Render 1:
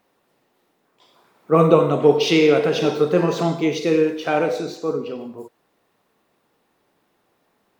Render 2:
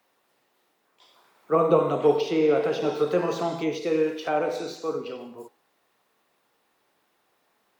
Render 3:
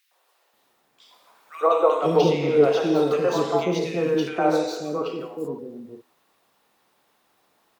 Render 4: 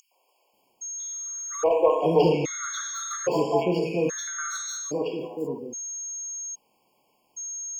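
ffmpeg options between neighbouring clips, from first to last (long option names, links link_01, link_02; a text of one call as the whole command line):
ffmpeg -i in.wav -filter_complex "[0:a]lowshelf=frequency=440:gain=-11,bandreject=frequency=82.34:width_type=h:width=4,bandreject=frequency=164.68:width_type=h:width=4,bandreject=frequency=247.02:width_type=h:width=4,bandreject=frequency=329.36:width_type=h:width=4,bandreject=frequency=411.7:width_type=h:width=4,bandreject=frequency=494.04:width_type=h:width=4,bandreject=frequency=576.38:width_type=h:width=4,bandreject=frequency=658.72:width_type=h:width=4,bandreject=frequency=741.06:width_type=h:width=4,bandreject=frequency=823.4:width_type=h:width=4,bandreject=frequency=905.74:width_type=h:width=4,bandreject=frequency=988.08:width_type=h:width=4,bandreject=frequency=1070.42:width_type=h:width=4,bandreject=frequency=1152.76:width_type=h:width=4,bandreject=frequency=1235.1:width_type=h:width=4,bandreject=frequency=1317.44:width_type=h:width=4,bandreject=frequency=1399.78:width_type=h:width=4,bandreject=frequency=1482.12:width_type=h:width=4,bandreject=frequency=1564.46:width_type=h:width=4,bandreject=frequency=1646.8:width_type=h:width=4,bandreject=frequency=1729.14:width_type=h:width=4,bandreject=frequency=1811.48:width_type=h:width=4,bandreject=frequency=1893.82:width_type=h:width=4,bandreject=frequency=1976.16:width_type=h:width=4,bandreject=frequency=2058.5:width_type=h:width=4,bandreject=frequency=2140.84:width_type=h:width=4,bandreject=frequency=2223.18:width_type=h:width=4,bandreject=frequency=2305.52:width_type=h:width=4,bandreject=frequency=2387.86:width_type=h:width=4,bandreject=frequency=2470.2:width_type=h:width=4,bandreject=frequency=2552.54:width_type=h:width=4,bandreject=frequency=2634.88:width_type=h:width=4,bandreject=frequency=2717.22:width_type=h:width=4,bandreject=frequency=2799.56:width_type=h:width=4,bandreject=frequency=2881.9:width_type=h:width=4,bandreject=frequency=2964.24:width_type=h:width=4,bandreject=frequency=3046.58:width_type=h:width=4,bandreject=frequency=3128.92:width_type=h:width=4,acrossover=split=150|340|1200[link_01][link_02][link_03][link_04];[link_04]acompressor=threshold=-38dB:ratio=12[link_05];[link_01][link_02][link_03][link_05]amix=inputs=4:normalize=0" out.wav
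ffmpeg -i in.wav -filter_complex "[0:a]acrossover=split=430|1900[link_01][link_02][link_03];[link_02]adelay=110[link_04];[link_01]adelay=530[link_05];[link_05][link_04][link_03]amix=inputs=3:normalize=0,volume=5dB" out.wav
ffmpeg -i in.wav -af "aeval=exprs='0.531*(cos(1*acos(clip(val(0)/0.531,-1,1)))-cos(1*PI/2))+0.0188*(cos(5*acos(clip(val(0)/0.531,-1,1)))-cos(5*PI/2))':channel_layout=same,aeval=exprs='val(0)+0.0316*sin(2*PI*6500*n/s)':channel_layout=same,afftfilt=real='re*gt(sin(2*PI*0.61*pts/sr)*(1-2*mod(floor(b*sr/1024/1100),2)),0)':imag='im*gt(sin(2*PI*0.61*pts/sr)*(1-2*mod(floor(b*sr/1024/1100),2)),0)':win_size=1024:overlap=0.75,volume=-1.5dB" out.wav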